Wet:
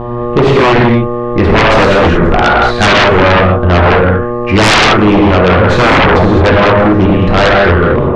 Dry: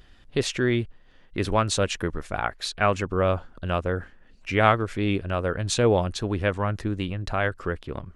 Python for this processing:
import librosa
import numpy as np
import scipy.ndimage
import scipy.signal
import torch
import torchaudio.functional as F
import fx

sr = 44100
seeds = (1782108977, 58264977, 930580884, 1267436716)

y = fx.tracing_dist(x, sr, depth_ms=0.058)
y = fx.dmg_buzz(y, sr, base_hz=120.0, harmonics=10, level_db=-41.0, tilt_db=-3, odd_only=False)
y = scipy.signal.sosfilt(scipy.signal.butter(2, 1700.0, 'lowpass', fs=sr, output='sos'), y)
y = fx.rev_gated(y, sr, seeds[0], gate_ms=250, shape='flat', drr_db=-3.5)
y = fx.fold_sine(y, sr, drive_db=16, ceiling_db=-3.5)